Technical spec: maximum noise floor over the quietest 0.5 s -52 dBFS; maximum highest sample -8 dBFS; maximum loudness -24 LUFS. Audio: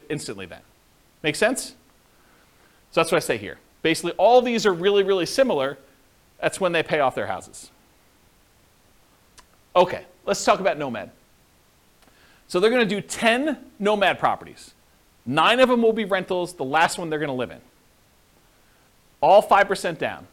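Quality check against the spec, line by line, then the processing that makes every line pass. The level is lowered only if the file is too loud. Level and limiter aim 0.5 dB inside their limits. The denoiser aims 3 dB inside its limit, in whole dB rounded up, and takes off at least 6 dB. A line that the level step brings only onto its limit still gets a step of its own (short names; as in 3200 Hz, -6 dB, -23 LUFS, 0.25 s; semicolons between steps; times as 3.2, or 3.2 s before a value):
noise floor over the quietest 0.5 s -58 dBFS: OK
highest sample -5.5 dBFS: fail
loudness -21.5 LUFS: fail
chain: gain -3 dB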